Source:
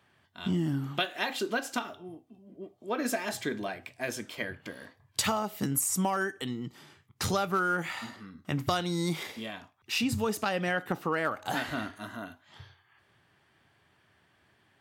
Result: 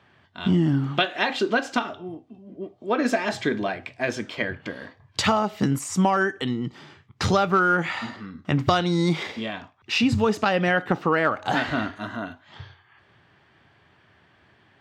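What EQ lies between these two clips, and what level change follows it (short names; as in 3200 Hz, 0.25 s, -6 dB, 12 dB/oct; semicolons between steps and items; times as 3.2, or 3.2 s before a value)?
air absorption 150 m; high shelf 8800 Hz +7.5 dB; +9.0 dB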